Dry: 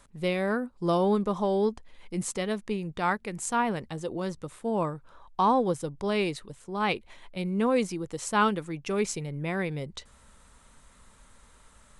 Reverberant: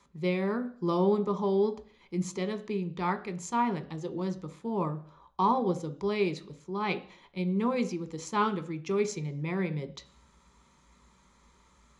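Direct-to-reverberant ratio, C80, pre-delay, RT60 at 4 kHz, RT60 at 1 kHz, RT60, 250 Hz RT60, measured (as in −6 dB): 7.5 dB, 19.0 dB, 3 ms, 0.60 s, 0.50 s, 0.50 s, 0.55 s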